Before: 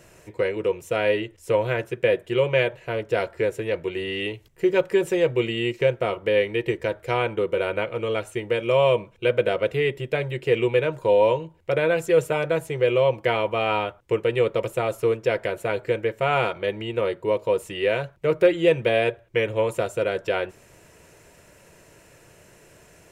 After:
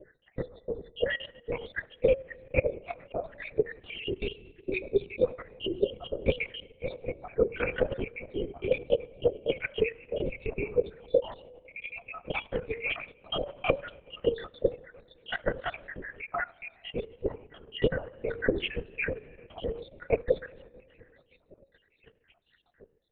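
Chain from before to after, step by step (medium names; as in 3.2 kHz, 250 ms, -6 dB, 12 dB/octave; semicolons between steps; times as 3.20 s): random holes in the spectrogram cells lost 84%; treble shelf 2.7 kHz -4 dB; in parallel at +1 dB: compressor with a negative ratio -27 dBFS, ratio -0.5; on the sum: static phaser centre 420 Hz, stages 4; de-hum 91.55 Hz, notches 16; on a send at -18.5 dB: reverberation RT60 3.1 s, pre-delay 4 ms; on the sum: LPC vocoder at 8 kHz whisper; dynamic bell 1.3 kHz, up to +5 dB, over -43 dBFS, Q 1.4; level held to a coarse grid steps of 10 dB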